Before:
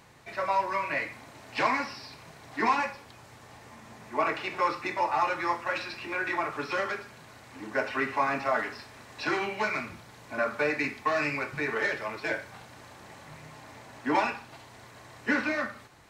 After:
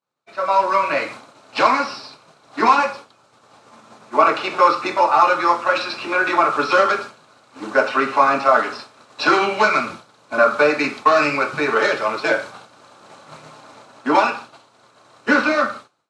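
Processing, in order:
downward expander −40 dBFS
automatic gain control gain up to 15.5 dB
loudspeaker in its box 190–9,800 Hz, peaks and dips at 550 Hz +4 dB, 1,300 Hz +9 dB, 1,900 Hz −10 dB, 4,000 Hz +4 dB
level −2 dB

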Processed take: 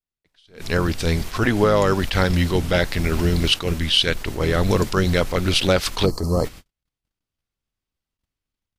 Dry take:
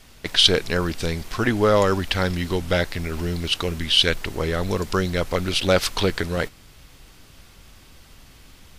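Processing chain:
sub-octave generator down 1 octave, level −5 dB
noise gate −39 dBFS, range −48 dB
automatic gain control gain up to 8 dB
gain on a spectral selection 0:06.05–0:06.45, 1,300–4,100 Hz −23 dB
downward compressor, threshold −15 dBFS, peak gain reduction 7 dB
level that may rise only so fast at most 160 dB per second
level +2 dB

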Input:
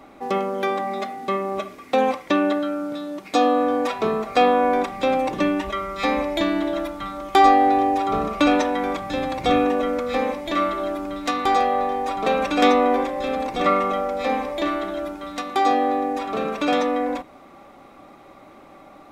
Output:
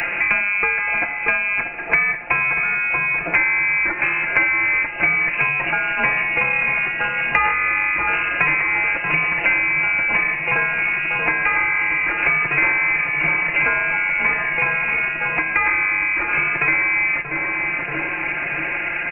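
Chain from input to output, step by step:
phase distortion by the signal itself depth 0.31 ms
low-shelf EQ 260 Hz −7.5 dB
comb filter 5.7 ms, depth 62%
voice inversion scrambler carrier 2,800 Hz
on a send: feedback echo with a low-pass in the loop 633 ms, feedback 51%, low-pass 950 Hz, level −8.5 dB
on the sum: multiband upward and downward compressor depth 100%
level +3 dB

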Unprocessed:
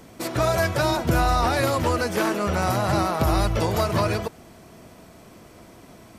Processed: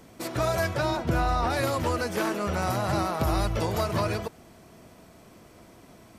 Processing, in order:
0:00.73–0:01.49: high-shelf EQ 8,600 Hz → 5,300 Hz −11 dB
level −4.5 dB

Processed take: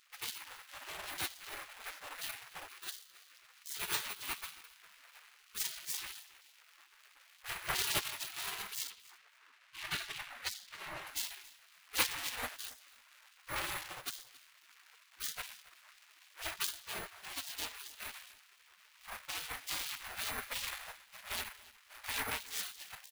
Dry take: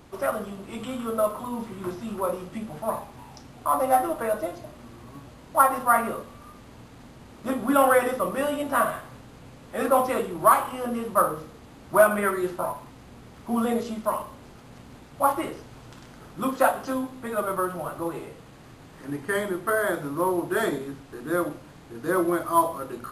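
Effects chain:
running median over 41 samples
0:08.90–0:11.07: low-pass filter 3,000 Hz 6 dB per octave
gate on every frequency bin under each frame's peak −30 dB weak
repeating echo 276 ms, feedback 15%, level −20.5 dB
level +7 dB

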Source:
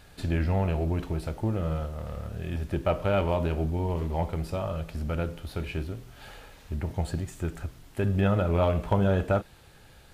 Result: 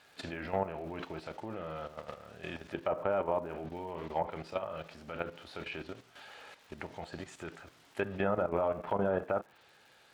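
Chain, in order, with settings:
meter weighting curve A
treble cut that deepens with the level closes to 1,200 Hz, closed at −27.5 dBFS
high-shelf EQ 7,800 Hz −7.5 dB
output level in coarse steps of 11 dB
surface crackle 180 per second −57 dBFS
level +3.5 dB

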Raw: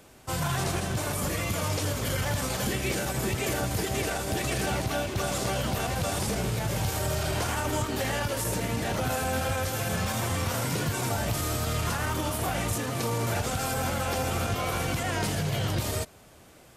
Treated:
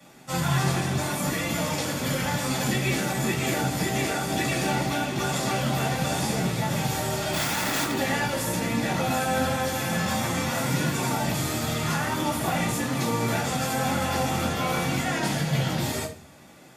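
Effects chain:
0:07.33–0:07.92: wrap-around overflow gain 23.5 dB
convolution reverb RT60 0.45 s, pre-delay 3 ms, DRR −13 dB
level −7.5 dB

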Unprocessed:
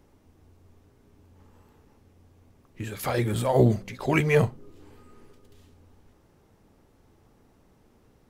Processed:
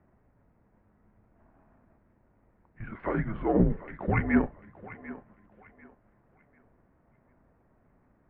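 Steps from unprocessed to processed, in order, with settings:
gain on one half-wave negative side −3 dB
single-sideband voice off tune −200 Hz 210–2,200 Hz
feedback echo with a high-pass in the loop 744 ms, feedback 31%, high-pass 290 Hz, level −15 dB

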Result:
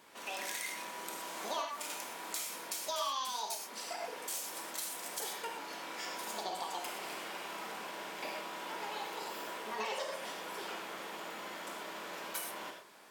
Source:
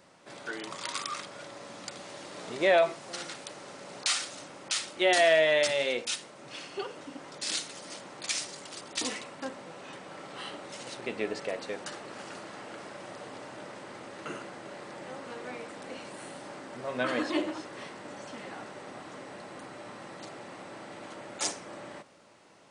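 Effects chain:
downward compressor 6 to 1, threshold −35 dBFS, peak gain reduction 15.5 dB
reverb whose tail is shaped and stops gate 240 ms flat, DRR 1 dB
wrong playback speed 45 rpm record played at 78 rpm
level −2 dB

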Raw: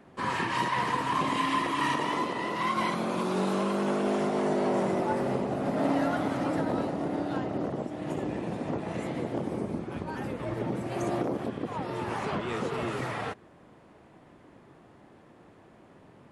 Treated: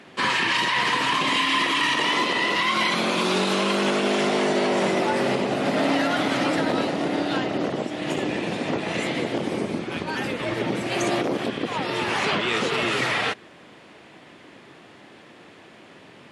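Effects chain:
meter weighting curve D
brickwall limiter −20 dBFS, peak gain reduction 7.5 dB
level +7 dB

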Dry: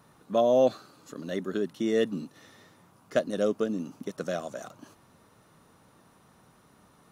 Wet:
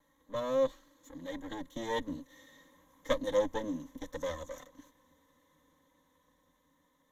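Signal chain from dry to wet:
lower of the sound and its delayed copy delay 3.8 ms
source passing by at 0:03.21, 10 m/s, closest 15 metres
EQ curve with evenly spaced ripples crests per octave 1.1, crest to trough 14 dB
level −5.5 dB

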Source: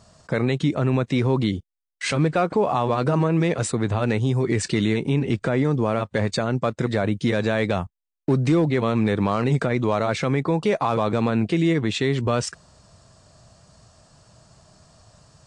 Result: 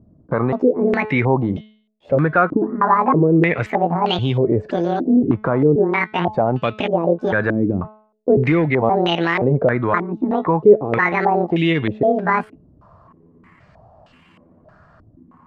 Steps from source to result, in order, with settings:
pitch shifter gated in a rhythm +9 semitones, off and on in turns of 523 ms
hum removal 214.8 Hz, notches 29
low-pass on a step sequencer 3.2 Hz 300–2,900 Hz
level +2 dB

